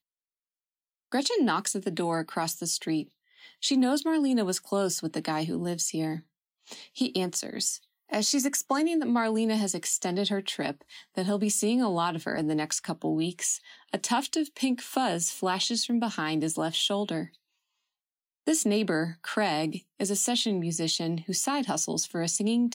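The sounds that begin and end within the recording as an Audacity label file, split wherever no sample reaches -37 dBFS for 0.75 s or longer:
1.120000	17.250000	sound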